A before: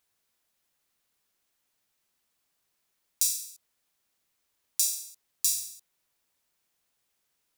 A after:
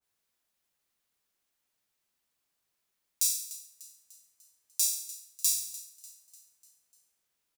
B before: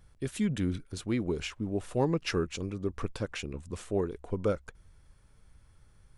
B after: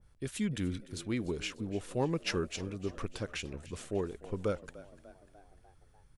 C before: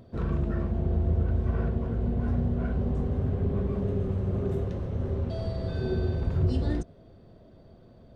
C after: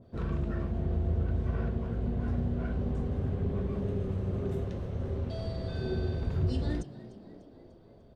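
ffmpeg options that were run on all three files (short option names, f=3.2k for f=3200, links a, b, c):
-filter_complex "[0:a]asplit=6[a][b][c][d][e][f];[b]adelay=297,afreqshift=66,volume=-18dB[g];[c]adelay=594,afreqshift=132,volume=-22.7dB[h];[d]adelay=891,afreqshift=198,volume=-27.5dB[i];[e]adelay=1188,afreqshift=264,volume=-32.2dB[j];[f]adelay=1485,afreqshift=330,volume=-36.9dB[k];[a][g][h][i][j][k]amix=inputs=6:normalize=0,adynamicequalizer=threshold=0.00355:dfrequency=1600:dqfactor=0.7:tfrequency=1600:tqfactor=0.7:attack=5:release=100:ratio=0.375:range=2:mode=boostabove:tftype=highshelf,volume=-4dB"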